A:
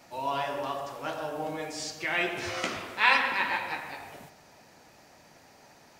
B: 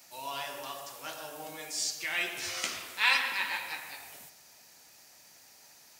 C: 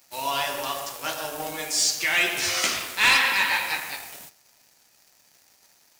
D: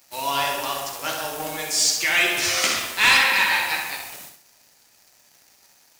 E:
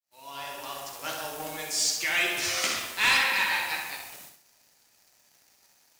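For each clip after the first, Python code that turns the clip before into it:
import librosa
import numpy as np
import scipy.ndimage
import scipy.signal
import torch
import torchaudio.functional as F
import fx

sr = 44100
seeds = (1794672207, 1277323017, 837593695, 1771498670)

y1 = librosa.effects.preemphasis(x, coef=0.9, zi=[0.0])
y1 = y1 * 10.0 ** (7.5 / 20.0)
y2 = fx.leveller(y1, sr, passes=3)
y3 = fx.echo_feedback(y2, sr, ms=65, feedback_pct=37, wet_db=-6.5)
y3 = y3 * 10.0 ** (2.0 / 20.0)
y4 = fx.fade_in_head(y3, sr, length_s=1.12)
y4 = y4 * 10.0 ** (-6.5 / 20.0)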